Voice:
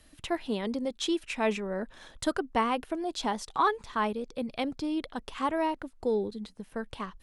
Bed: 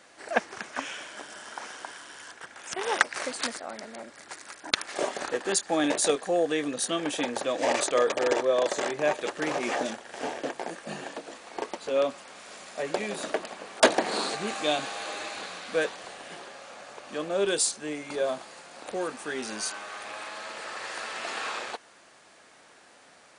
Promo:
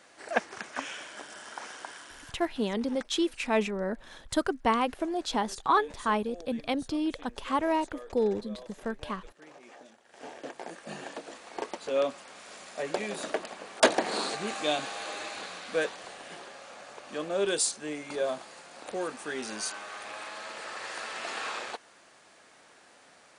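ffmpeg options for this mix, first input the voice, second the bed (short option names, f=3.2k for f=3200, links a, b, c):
-filter_complex "[0:a]adelay=2100,volume=1.5dB[a];[1:a]volume=18.5dB,afade=t=out:st=2.01:d=0.76:silence=0.0944061,afade=t=in:st=9.92:d=1.25:silence=0.0944061[b];[a][b]amix=inputs=2:normalize=0"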